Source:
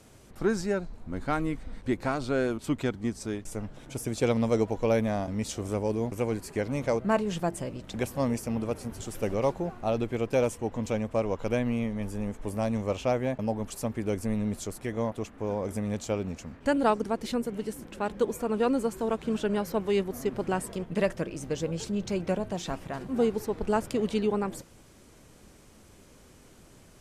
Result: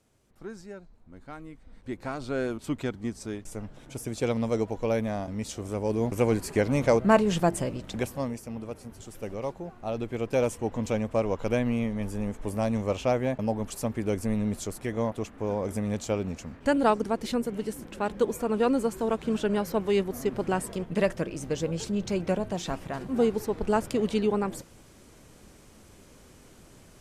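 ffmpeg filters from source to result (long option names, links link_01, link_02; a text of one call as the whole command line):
ffmpeg -i in.wav -af "volume=13.5dB,afade=type=in:start_time=1.58:duration=0.86:silence=0.251189,afade=type=in:start_time=5.74:duration=0.52:silence=0.421697,afade=type=out:start_time=7.57:duration=0.77:silence=0.251189,afade=type=in:start_time=9.71:duration=0.92:silence=0.398107" out.wav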